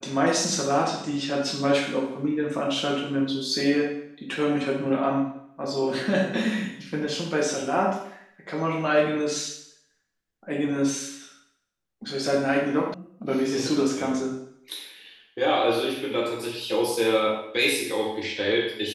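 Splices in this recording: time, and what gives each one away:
12.94 sound cut off

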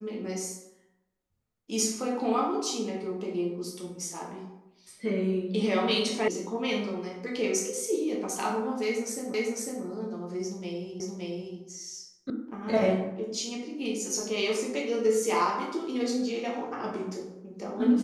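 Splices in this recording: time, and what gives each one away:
6.28 sound cut off
9.34 repeat of the last 0.5 s
11 repeat of the last 0.57 s
12.3 sound cut off

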